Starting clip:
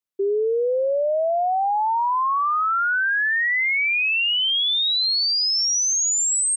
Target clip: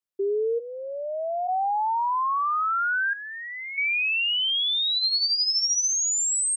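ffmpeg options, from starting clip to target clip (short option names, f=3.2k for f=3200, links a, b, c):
-filter_complex "[0:a]asplit=3[a][b][c];[a]afade=t=out:st=0.58:d=0.02[d];[b]highpass=f=690:w=0.5412,highpass=f=690:w=1.3066,afade=t=in:st=0.58:d=0.02,afade=t=out:st=1.47:d=0.02[e];[c]afade=t=in:st=1.47:d=0.02[f];[d][e][f]amix=inputs=3:normalize=0,asettb=1/sr,asplit=3[g][h][i];[g]atrim=end=3.134[j];[h]atrim=start=3.13:end=3.78,asetpts=PTS-STARTPTS,afade=t=in:d=0.004:c=qsin,afade=t=out:st=0.646:d=0.004:c=qsin,aderivative[k];[i]atrim=start=3.776[l];[j][k]acrossfade=d=0.004:c1=hsin:c2=qsin[m];[m][l]acrossfade=d=0.004:c1=qsin:c2=hsin,asettb=1/sr,asplit=3[n][o][p];[n]atrim=end=4.964[q];[o]atrim=start=4.96:end=5.89,asetpts=PTS-STARTPTS,afade=t=in:d=0.004:c=qsin,afade=t=out:st=0.926:d=0.004:c=qsin,aecho=1:1:5.1:0.41,atrim=end_sample=41013[r];[p]atrim=start=5.886[s];[q][r]acrossfade=d=0.004:c1=hsin:c2=qsin[t];[t][s]acrossfade=d=0.004:c1=qsin:c2=hsin,volume=-3.5dB"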